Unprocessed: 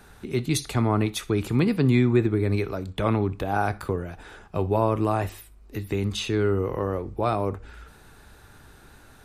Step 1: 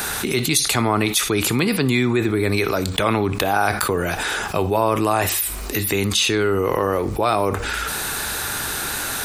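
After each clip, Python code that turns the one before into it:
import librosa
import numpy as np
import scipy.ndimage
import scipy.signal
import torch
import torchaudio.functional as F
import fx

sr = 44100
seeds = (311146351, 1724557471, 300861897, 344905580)

y = fx.tilt_eq(x, sr, slope=3.0)
y = fx.env_flatten(y, sr, amount_pct=70)
y = F.gain(torch.from_numpy(y), 1.5).numpy()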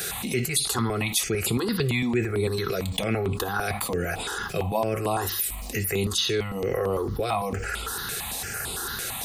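y = fx.notch_comb(x, sr, f0_hz=300.0)
y = fx.phaser_held(y, sr, hz=8.9, low_hz=250.0, high_hz=5900.0)
y = F.gain(torch.from_numpy(y), -2.5).numpy()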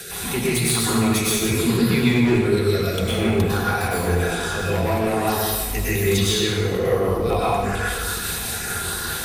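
y = 10.0 ** (-17.5 / 20.0) * (np.abs((x / 10.0 ** (-17.5 / 20.0) + 3.0) % 4.0 - 2.0) - 1.0)
y = fx.rotary(y, sr, hz=5.0)
y = fx.rev_plate(y, sr, seeds[0], rt60_s=1.5, hf_ratio=0.75, predelay_ms=90, drr_db=-7.5)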